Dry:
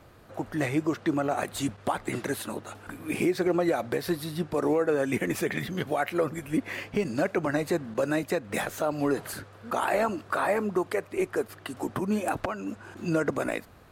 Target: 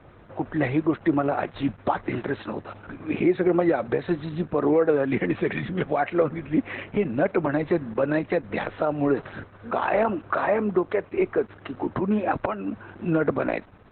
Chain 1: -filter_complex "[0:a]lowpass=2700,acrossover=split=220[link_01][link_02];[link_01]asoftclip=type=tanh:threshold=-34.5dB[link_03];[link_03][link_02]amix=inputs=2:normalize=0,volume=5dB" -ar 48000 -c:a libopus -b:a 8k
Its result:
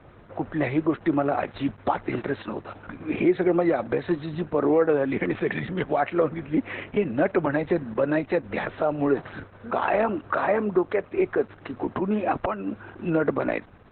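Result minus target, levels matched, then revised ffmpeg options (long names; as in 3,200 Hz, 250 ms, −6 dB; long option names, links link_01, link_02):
soft clipping: distortion +14 dB
-filter_complex "[0:a]lowpass=2700,acrossover=split=220[link_01][link_02];[link_01]asoftclip=type=tanh:threshold=-24.5dB[link_03];[link_03][link_02]amix=inputs=2:normalize=0,volume=5dB" -ar 48000 -c:a libopus -b:a 8k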